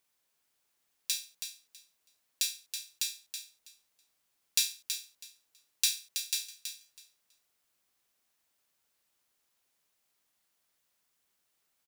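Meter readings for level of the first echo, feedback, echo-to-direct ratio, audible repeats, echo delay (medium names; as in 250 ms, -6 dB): -8.0 dB, 18%, -8.0 dB, 2, 325 ms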